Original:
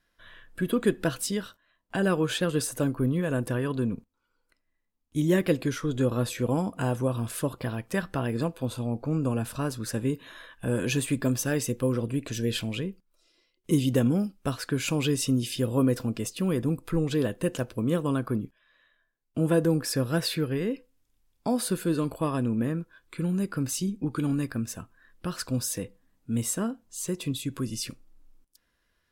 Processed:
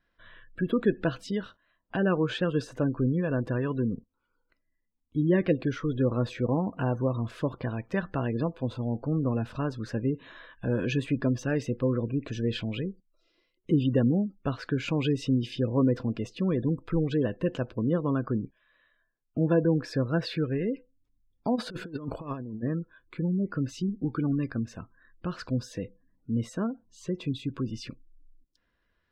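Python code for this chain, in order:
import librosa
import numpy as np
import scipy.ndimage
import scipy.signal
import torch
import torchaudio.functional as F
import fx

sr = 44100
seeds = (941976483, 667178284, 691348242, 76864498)

y = fx.spec_gate(x, sr, threshold_db=-30, keep='strong')
y = fx.over_compress(y, sr, threshold_db=-32.0, ratio=-0.5, at=(21.55, 22.62), fade=0.02)
y = fx.air_absorb(y, sr, metres=200.0)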